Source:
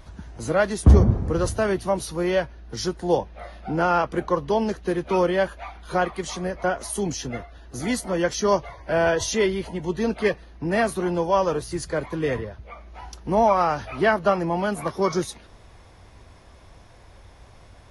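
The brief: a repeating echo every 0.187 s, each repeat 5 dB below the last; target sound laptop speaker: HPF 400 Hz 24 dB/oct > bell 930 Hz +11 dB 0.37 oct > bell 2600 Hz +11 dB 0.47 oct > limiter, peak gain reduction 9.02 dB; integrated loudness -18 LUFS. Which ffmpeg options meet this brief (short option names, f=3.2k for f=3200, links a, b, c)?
-af "highpass=f=400:w=0.5412,highpass=f=400:w=1.3066,equalizer=f=930:t=o:w=0.37:g=11,equalizer=f=2.6k:t=o:w=0.47:g=11,aecho=1:1:187|374|561|748|935|1122|1309:0.562|0.315|0.176|0.0988|0.0553|0.031|0.0173,volume=5dB,alimiter=limit=-6dB:level=0:latency=1"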